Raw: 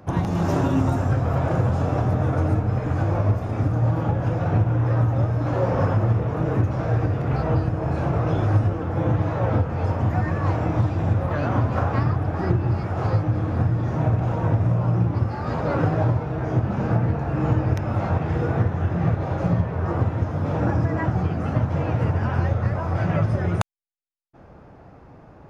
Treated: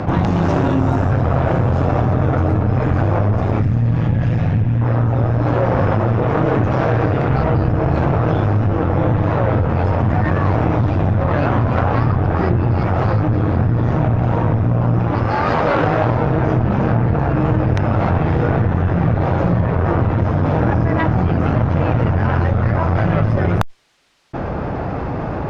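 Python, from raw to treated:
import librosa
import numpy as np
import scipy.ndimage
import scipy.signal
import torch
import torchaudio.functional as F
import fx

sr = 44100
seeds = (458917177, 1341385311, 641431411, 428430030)

y = fx.spec_box(x, sr, start_s=3.62, length_s=1.19, low_hz=230.0, high_hz=1600.0, gain_db=-10)
y = fx.low_shelf(y, sr, hz=120.0, db=-10.5, at=(5.91, 7.3))
y = scipy.signal.sosfilt(scipy.signal.butter(2, 4400.0, 'lowpass', fs=sr, output='sos'), y)
y = fx.low_shelf(y, sr, hz=290.0, db=-10.5, at=(14.99, 16.2))
y = fx.rider(y, sr, range_db=5, speed_s=0.5)
y = fx.cheby_harmonics(y, sr, harmonics=(8,), levels_db=(-21,), full_scale_db=-5.5)
y = fx.env_flatten(y, sr, amount_pct=70)
y = F.gain(torch.from_numpy(y), 1.5).numpy()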